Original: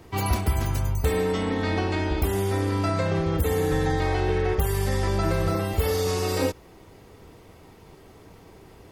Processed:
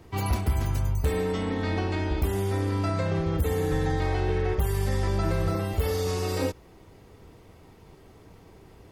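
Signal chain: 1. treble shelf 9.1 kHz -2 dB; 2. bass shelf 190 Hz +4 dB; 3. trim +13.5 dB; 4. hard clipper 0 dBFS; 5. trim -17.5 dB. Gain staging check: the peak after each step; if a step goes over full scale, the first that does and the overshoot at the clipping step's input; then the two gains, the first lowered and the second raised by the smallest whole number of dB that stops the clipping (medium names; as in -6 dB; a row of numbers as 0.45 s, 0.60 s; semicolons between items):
-12.5 dBFS, -9.5 dBFS, +4.0 dBFS, 0.0 dBFS, -17.5 dBFS; step 3, 4.0 dB; step 3 +9.5 dB, step 5 -13.5 dB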